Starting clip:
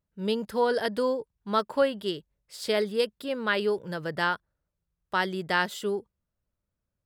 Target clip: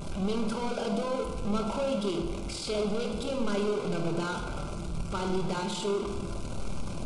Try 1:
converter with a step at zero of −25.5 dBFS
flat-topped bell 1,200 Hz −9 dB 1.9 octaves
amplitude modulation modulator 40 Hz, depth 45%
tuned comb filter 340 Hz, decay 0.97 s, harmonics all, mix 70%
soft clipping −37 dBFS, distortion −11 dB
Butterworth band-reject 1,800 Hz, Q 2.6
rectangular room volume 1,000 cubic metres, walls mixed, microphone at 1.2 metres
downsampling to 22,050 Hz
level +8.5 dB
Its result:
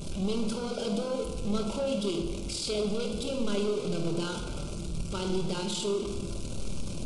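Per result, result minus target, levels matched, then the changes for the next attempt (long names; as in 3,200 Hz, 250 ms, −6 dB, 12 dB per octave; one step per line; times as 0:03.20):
1,000 Hz band −5.5 dB; 8,000 Hz band +4.0 dB
remove: flat-topped bell 1,200 Hz −9 dB 1.9 octaves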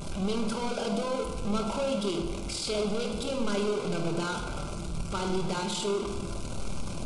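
8,000 Hz band +4.0 dB
add after Butterworth band-reject: high-shelf EQ 3,000 Hz −5 dB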